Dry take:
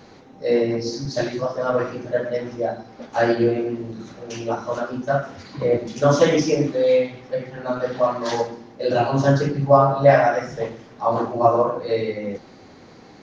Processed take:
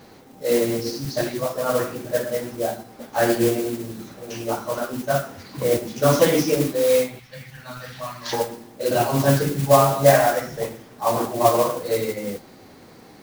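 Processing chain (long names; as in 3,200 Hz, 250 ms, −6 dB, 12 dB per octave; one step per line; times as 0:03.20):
0:07.19–0:08.33: drawn EQ curve 120 Hz 0 dB, 400 Hz −21 dB, 2,400 Hz +3 dB
noise that follows the level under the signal 13 dB
level −1 dB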